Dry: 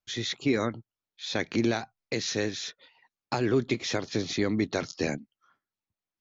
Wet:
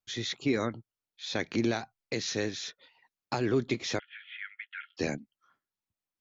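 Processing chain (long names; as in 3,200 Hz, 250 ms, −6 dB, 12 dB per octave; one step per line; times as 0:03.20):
0:03.99–0:04.97: Chebyshev band-pass filter 1,400–3,300 Hz, order 5
level −2.5 dB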